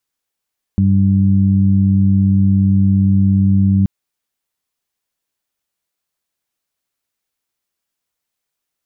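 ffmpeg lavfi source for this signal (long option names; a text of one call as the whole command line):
ffmpeg -f lavfi -i "aevalsrc='0.251*sin(2*PI*97.3*t)+0.251*sin(2*PI*194.6*t)+0.0316*sin(2*PI*291.9*t)':duration=3.08:sample_rate=44100" out.wav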